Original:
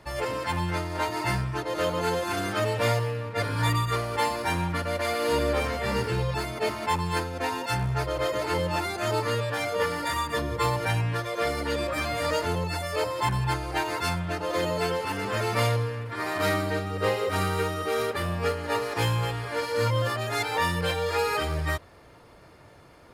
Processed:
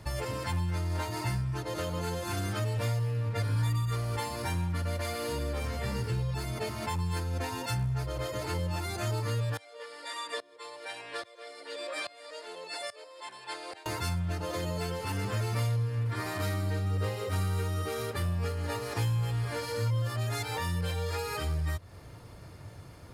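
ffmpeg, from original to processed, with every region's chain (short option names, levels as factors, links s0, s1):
-filter_complex "[0:a]asettb=1/sr,asplit=3[s0][s1][s2];[s0]atrim=end=9.574[s3];[s1]atrim=start=9.57:end=13.86,asetpts=PTS-STARTPTS,afade=t=in:d=0.004:c=qsin,afade=t=out:st=4.286:d=0.004:c=qsin,highpass=f=420:w=0.5412,highpass=f=420:w=1.3066,equalizer=f=870:t=q:w=4:g=-4,equalizer=f=1300:t=q:w=4:g=-4,equalizer=f=3800:t=q:w=4:g=3,equalizer=f=6300:t=q:w=4:g=-9,lowpass=f=8900:w=0.5412,lowpass=f=8900:w=1.3066,aeval=exprs='val(0)*pow(10,-22*if(lt(mod(-1.2*n/s,1),2*abs(-1.2)/1000),1-mod(-1.2*n/s,1)/(2*abs(-1.2)/1000),(mod(-1.2*n/s,1)-2*abs(-1.2)/1000)/(1-2*abs(-1.2)/1000))/20)':c=same[s4];[s2]atrim=start=13.856[s5];[s3][s4]acrossfade=d=0.004:c1=hsin:c2=qsin[s6];[s6][s5]acrossfade=d=0.004:c1=qsin:c2=hsin,bass=f=250:g=7,treble=f=4000:g=7,acompressor=threshold=0.0316:ratio=6,equalizer=f=100:w=1.7:g=7,volume=0.794"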